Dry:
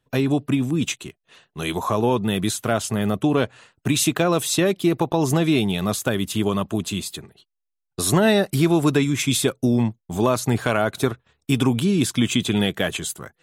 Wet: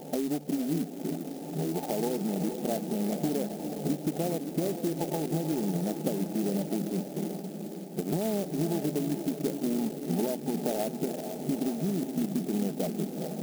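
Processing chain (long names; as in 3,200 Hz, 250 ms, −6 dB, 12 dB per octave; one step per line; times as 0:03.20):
converter with a step at zero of −31 dBFS
brick-wall band-pass 150–890 Hz
downward compressor 6 to 1, threshold −28 dBFS, peak gain reduction 14 dB
on a send: feedback delay with all-pass diffusion 458 ms, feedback 66%, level −7 dB
on the sum: converter with an unsteady clock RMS 0.088 ms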